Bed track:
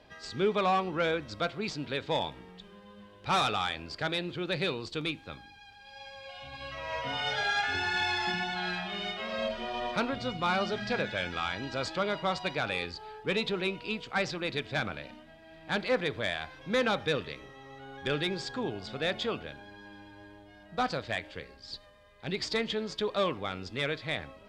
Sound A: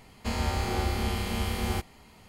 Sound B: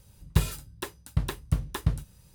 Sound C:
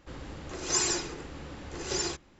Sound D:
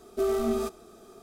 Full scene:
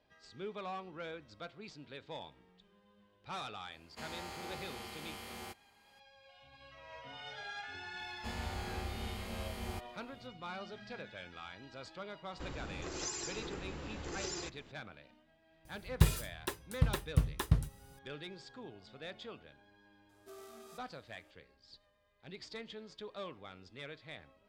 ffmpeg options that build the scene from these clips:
ffmpeg -i bed.wav -i cue0.wav -i cue1.wav -i cue2.wav -i cue3.wav -filter_complex "[1:a]asplit=2[link_01][link_02];[0:a]volume=-15.5dB[link_03];[link_01]highpass=frequency=460:poles=1[link_04];[3:a]acompressor=threshold=-44dB:ratio=8:attack=84:release=122:knee=6:detection=peak[link_05];[4:a]highpass=frequency=1500:poles=1[link_06];[link_04]atrim=end=2.28,asetpts=PTS-STARTPTS,volume=-12dB,afade=type=in:duration=0.004:curve=hsin,afade=type=out:start_time=2.276:duration=0.004:curve=hsin,adelay=3720[link_07];[link_02]atrim=end=2.28,asetpts=PTS-STARTPTS,volume=-12.5dB,afade=type=in:duration=0.004:curve=hsin,afade=type=out:start_time=2.276:duration=0.004:curve=hsin,adelay=7990[link_08];[link_05]atrim=end=2.39,asetpts=PTS-STARTPTS,afade=type=in:duration=0.004:curve=hsin,afade=type=out:start_time=2.386:duration=0.004:curve=hsin,adelay=12330[link_09];[2:a]atrim=end=2.34,asetpts=PTS-STARTPTS,volume=-3dB,afade=type=in:duration=0.004:curve=hsin,afade=type=out:start_time=2.336:duration=0.004:curve=hsin,adelay=15650[link_10];[link_06]atrim=end=1.22,asetpts=PTS-STARTPTS,volume=-15.5dB,afade=type=in:duration=0.004:curve=hsin,afade=type=out:start_time=1.216:duration=0.004:curve=hsin,adelay=20090[link_11];[link_03][link_07][link_08][link_09][link_10][link_11]amix=inputs=6:normalize=0" out.wav

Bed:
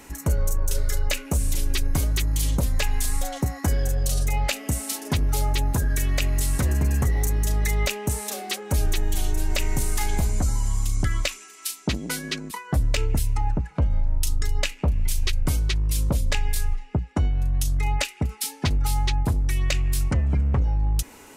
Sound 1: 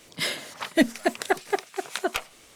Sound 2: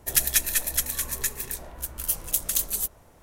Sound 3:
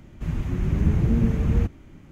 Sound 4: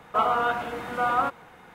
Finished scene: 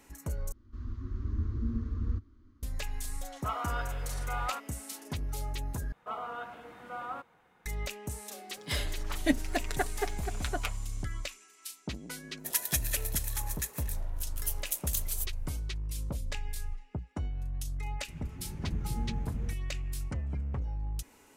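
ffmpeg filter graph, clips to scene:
ffmpeg -i bed.wav -i cue0.wav -i cue1.wav -i cue2.wav -i cue3.wav -filter_complex "[3:a]asplit=2[link_01][link_02];[4:a]asplit=2[link_03][link_04];[0:a]volume=-13dB[link_05];[link_01]firequalizer=gain_entry='entry(100,0);entry(160,-27);entry(230,-1);entry(320,-4);entry(490,-14);entry(760,-23);entry(1100,0);entry(2400,-19);entry(4300,-2);entry(8100,-19)':delay=0.05:min_phase=1[link_06];[link_03]highpass=frequency=1200:poles=1[link_07];[1:a]aecho=1:1:6.9:0.58[link_08];[2:a]highpass=300[link_09];[link_05]asplit=3[link_10][link_11][link_12];[link_10]atrim=end=0.524[link_13];[link_06]atrim=end=2.11,asetpts=PTS-STARTPTS,volume=-10dB[link_14];[link_11]atrim=start=2.626:end=5.924[link_15];[link_04]atrim=end=1.74,asetpts=PTS-STARTPTS,volume=-15.5dB[link_16];[link_12]atrim=start=7.656[link_17];[link_07]atrim=end=1.74,asetpts=PTS-STARTPTS,volume=-8.5dB,afade=type=in:duration=0.004:curve=hsin,afade=type=out:start_time=1.736:duration=0.004:curve=hsin,adelay=3300[link_18];[link_08]atrim=end=2.55,asetpts=PTS-STARTPTS,volume=-8.5dB,afade=type=in:duration=0.004:curve=hsin,afade=type=out:start_time=2.546:duration=0.004:curve=hsin,adelay=8490[link_19];[link_09]atrim=end=3.22,asetpts=PTS-STARTPTS,volume=-8.5dB,afade=type=in:duration=0.004:curve=hsin,afade=type=out:start_time=3.216:duration=0.004:curve=hsin,adelay=12380[link_20];[link_02]atrim=end=2.11,asetpts=PTS-STARTPTS,volume=-17dB,afade=type=in:duration=0.004:curve=hsin,afade=type=out:start_time=2.106:duration=0.004:curve=hsin,adelay=17870[link_21];[link_13][link_14]acrossfade=duration=0.004:curve1=hsin:curve2=hsin[link_22];[link_22][link_15]acrossfade=duration=0.004:curve1=hsin:curve2=hsin[link_23];[link_23][link_16]acrossfade=duration=0.004:curve1=hsin:curve2=hsin[link_24];[link_24][link_17]acrossfade=duration=0.004:curve1=hsin:curve2=hsin[link_25];[link_25][link_18][link_19][link_20][link_21]amix=inputs=5:normalize=0" out.wav

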